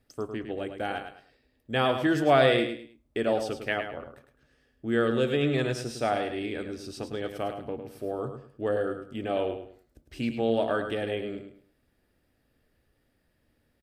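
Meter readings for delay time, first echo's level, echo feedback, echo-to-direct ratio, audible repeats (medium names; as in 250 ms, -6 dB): 105 ms, -8.0 dB, 28%, -7.5 dB, 3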